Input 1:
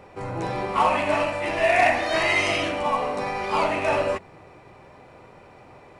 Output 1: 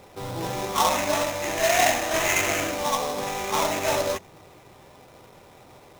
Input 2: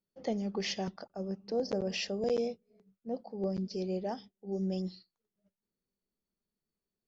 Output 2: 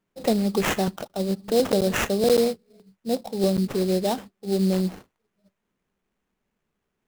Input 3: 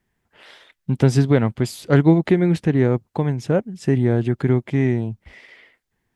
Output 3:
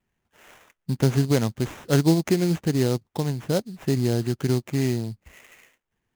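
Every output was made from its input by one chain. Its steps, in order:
sample-rate reduction 4,600 Hz, jitter 20%
dynamic equaliser 6,400 Hz, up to +7 dB, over −51 dBFS, Q 5
loudness normalisation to −24 LKFS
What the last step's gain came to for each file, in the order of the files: −1.5, +11.5, −5.0 decibels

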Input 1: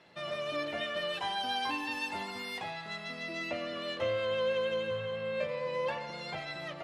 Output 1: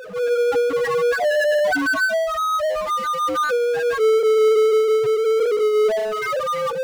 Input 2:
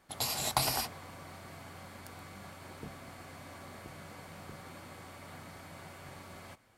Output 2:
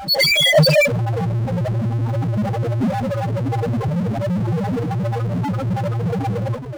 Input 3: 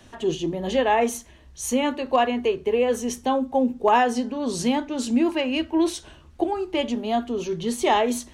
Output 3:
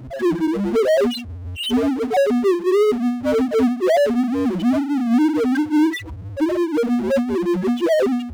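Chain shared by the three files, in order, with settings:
partials spread apart or drawn together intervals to 76%
spectral peaks only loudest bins 2
power curve on the samples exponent 0.5
loudness normalisation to −19 LKFS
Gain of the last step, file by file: +15.5, +26.0, +4.0 decibels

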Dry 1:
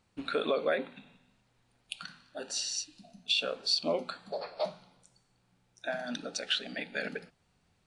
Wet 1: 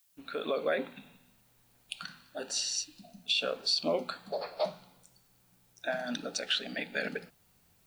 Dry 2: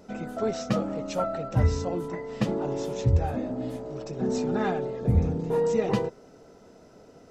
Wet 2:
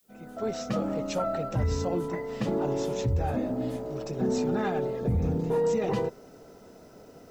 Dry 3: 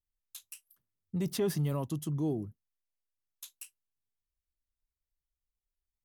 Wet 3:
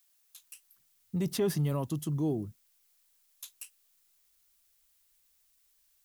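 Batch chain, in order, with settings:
fade in at the beginning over 0.82 s
brickwall limiter −20.5 dBFS
background noise blue −71 dBFS
level +1.5 dB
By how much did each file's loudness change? −0.5, −1.5, +1.0 LU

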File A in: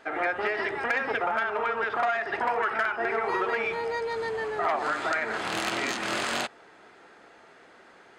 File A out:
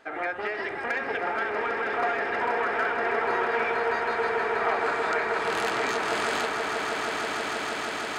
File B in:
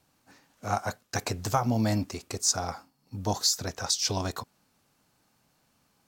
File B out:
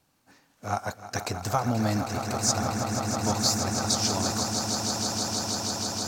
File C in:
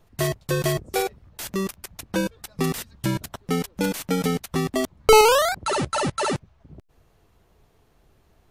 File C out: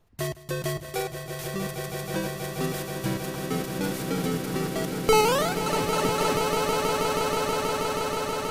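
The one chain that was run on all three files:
echo that builds up and dies away 160 ms, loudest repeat 8, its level −9 dB
loudness normalisation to −27 LKFS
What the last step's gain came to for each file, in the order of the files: −2.5, −0.5, −6.5 decibels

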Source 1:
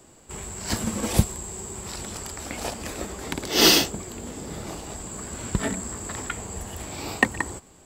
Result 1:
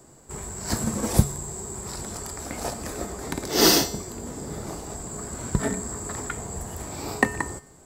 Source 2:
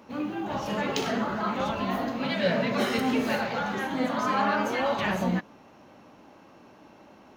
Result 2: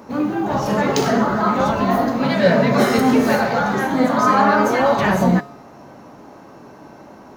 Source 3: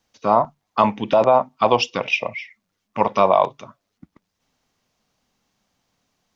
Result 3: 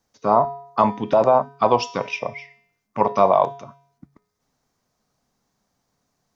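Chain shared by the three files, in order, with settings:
parametric band 2,900 Hz −10 dB 0.91 octaves
tuned comb filter 140 Hz, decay 0.65 s, harmonics odd, mix 70%
normalise the peak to −2 dBFS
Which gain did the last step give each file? +11.0, +21.0, +9.5 decibels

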